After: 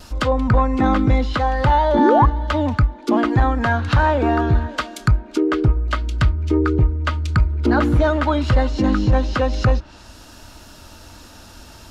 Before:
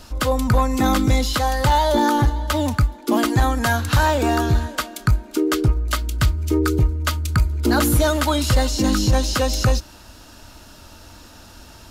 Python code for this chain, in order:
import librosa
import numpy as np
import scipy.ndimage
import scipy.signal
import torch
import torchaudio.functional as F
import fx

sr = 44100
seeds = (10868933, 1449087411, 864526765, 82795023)

y = fx.env_lowpass_down(x, sr, base_hz=2100.0, full_db=-16.0)
y = fx.vibrato(y, sr, rate_hz=0.4, depth_cents=6.4)
y = fx.spec_paint(y, sr, seeds[0], shape='rise', start_s=1.98, length_s=0.28, low_hz=210.0, high_hz=1200.0, level_db=-16.0)
y = F.gain(torch.from_numpy(y), 1.5).numpy()